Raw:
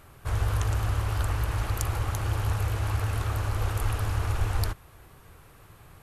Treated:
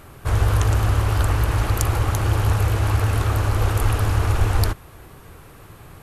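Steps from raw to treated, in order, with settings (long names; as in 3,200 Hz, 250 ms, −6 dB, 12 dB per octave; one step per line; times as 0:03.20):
parametric band 290 Hz +4 dB 1.8 octaves
level +7.5 dB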